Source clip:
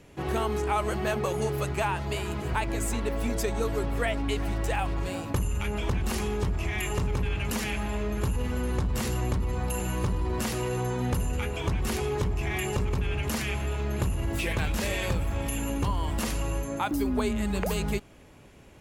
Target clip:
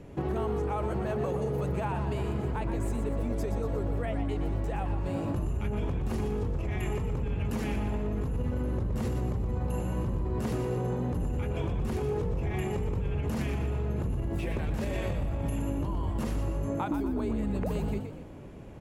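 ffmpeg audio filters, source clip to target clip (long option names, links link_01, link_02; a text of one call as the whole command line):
ffmpeg -i in.wav -filter_complex "[0:a]tiltshelf=frequency=1300:gain=7.5,alimiter=limit=-17dB:level=0:latency=1,acompressor=threshold=-28dB:ratio=6,asplit=2[link_01][link_02];[link_02]asplit=5[link_03][link_04][link_05][link_06][link_07];[link_03]adelay=121,afreqshift=49,volume=-8dB[link_08];[link_04]adelay=242,afreqshift=98,volume=-15.5dB[link_09];[link_05]adelay=363,afreqshift=147,volume=-23.1dB[link_10];[link_06]adelay=484,afreqshift=196,volume=-30.6dB[link_11];[link_07]adelay=605,afreqshift=245,volume=-38.1dB[link_12];[link_08][link_09][link_10][link_11][link_12]amix=inputs=5:normalize=0[link_13];[link_01][link_13]amix=inputs=2:normalize=0" out.wav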